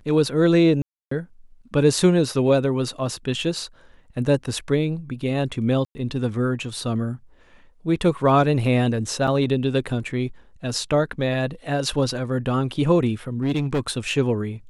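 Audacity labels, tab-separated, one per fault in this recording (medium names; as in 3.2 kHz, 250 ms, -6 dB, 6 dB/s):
0.820000	1.110000	dropout 294 ms
5.850000	5.950000	dropout 100 ms
9.270000	9.280000	dropout 5.6 ms
13.420000	13.910000	clipped -18 dBFS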